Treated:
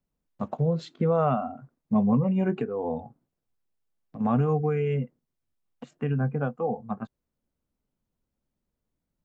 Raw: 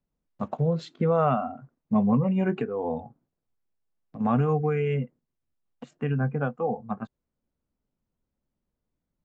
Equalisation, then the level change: dynamic bell 2 kHz, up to -4 dB, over -40 dBFS, Q 0.7; 0.0 dB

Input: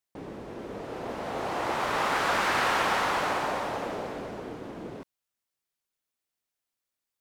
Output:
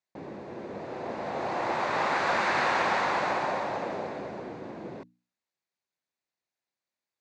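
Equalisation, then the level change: cabinet simulation 110–6100 Hz, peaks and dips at 280 Hz -3 dB, 1.3 kHz -5 dB, 3.1 kHz -9 dB, 5.4 kHz -6 dB; hum notches 60/120/180/240/300 Hz; band-stop 440 Hz, Q 12; +1.5 dB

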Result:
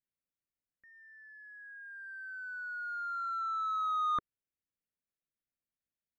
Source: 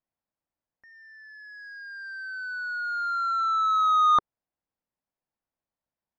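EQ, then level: static phaser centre 2.1 kHz, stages 4; -6.0 dB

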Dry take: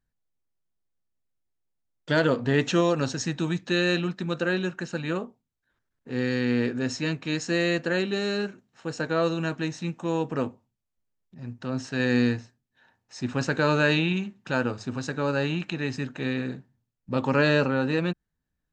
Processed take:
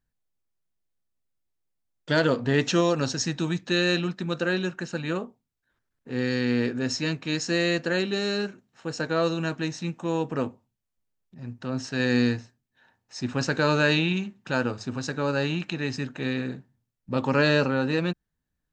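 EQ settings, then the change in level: dynamic bell 5.2 kHz, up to +6 dB, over -47 dBFS, Q 1.8; 0.0 dB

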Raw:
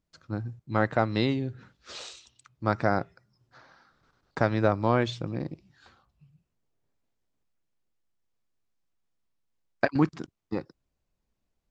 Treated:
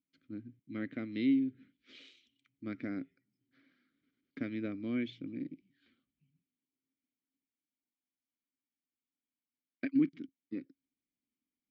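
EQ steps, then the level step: vowel filter i; treble shelf 6.2 kHz -9 dB; +2.5 dB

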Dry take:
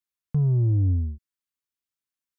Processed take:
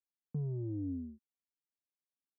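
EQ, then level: ladder band-pass 310 Hz, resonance 40%; peaking EQ 360 Hz -2.5 dB; +5.0 dB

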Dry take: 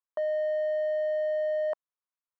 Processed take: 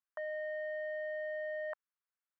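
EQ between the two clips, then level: resonant high-pass 1.6 kHz, resonance Q 2.2; tilt EQ -4 dB/octave; treble shelf 2.8 kHz -10 dB; +1.5 dB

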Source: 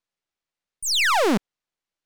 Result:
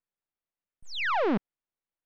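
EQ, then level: distance through air 260 m; treble shelf 5.4 kHz -10.5 dB; -5.0 dB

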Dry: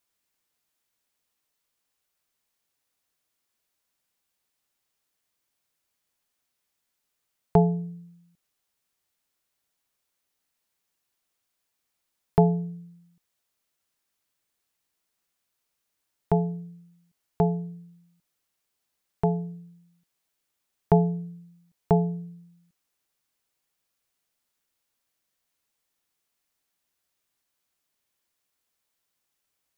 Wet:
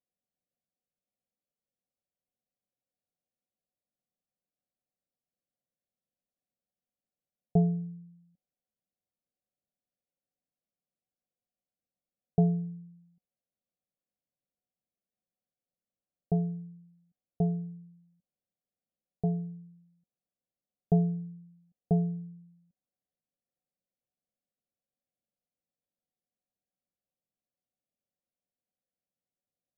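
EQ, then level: rippled Chebyshev low-pass 770 Hz, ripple 9 dB; -2.0 dB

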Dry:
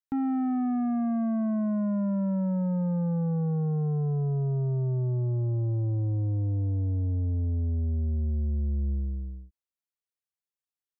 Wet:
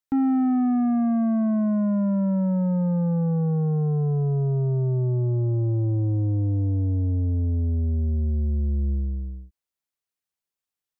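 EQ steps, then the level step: dynamic bell 320 Hz, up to +4 dB, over -40 dBFS, Q 2; +4.0 dB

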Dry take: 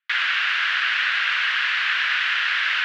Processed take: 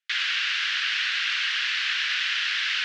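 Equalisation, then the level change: band-pass filter 5.9 kHz, Q 1.3; +6.0 dB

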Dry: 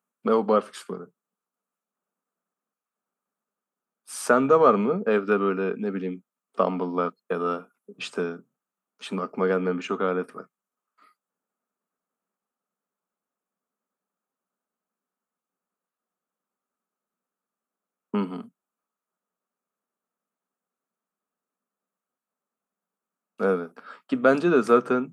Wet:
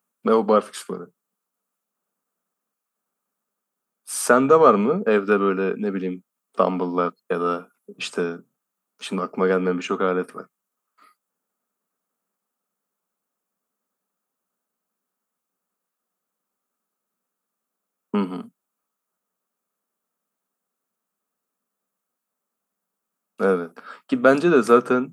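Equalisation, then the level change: treble shelf 7.7 kHz +8.5 dB; +3.5 dB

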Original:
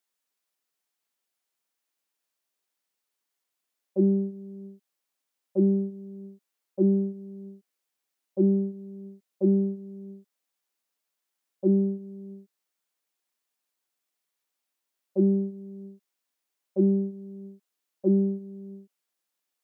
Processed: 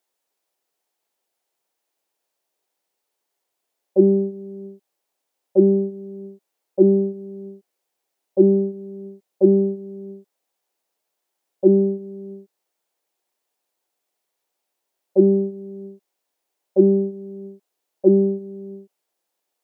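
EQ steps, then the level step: high-order bell 550 Hz +8 dB; +3.5 dB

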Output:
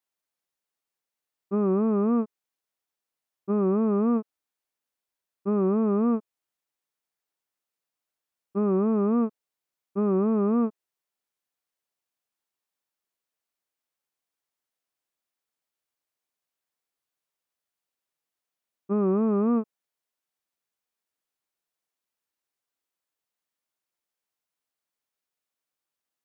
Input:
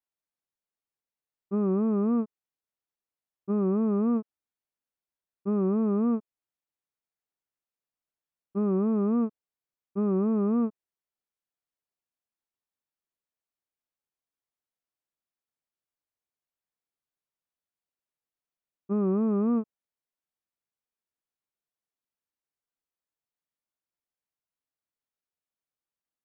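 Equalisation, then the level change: bass shelf 190 Hz -9.5 dB; +5.5 dB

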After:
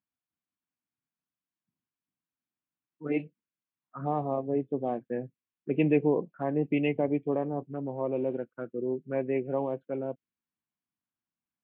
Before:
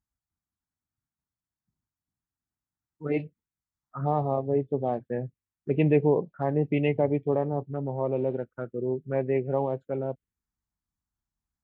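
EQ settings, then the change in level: cabinet simulation 250–2900 Hz, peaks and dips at 420 Hz -6 dB, 600 Hz -6 dB, 850 Hz -8 dB, 1.3 kHz -6 dB, 1.9 kHz -6 dB; +3.0 dB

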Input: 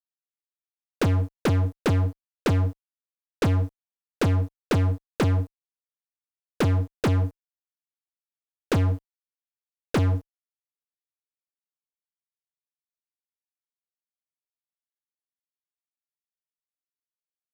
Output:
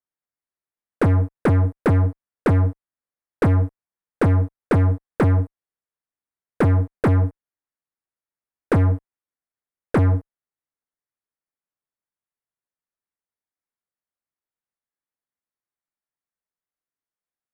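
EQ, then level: distance through air 52 m; high-order bell 4.3 kHz -13.5 dB; +5.0 dB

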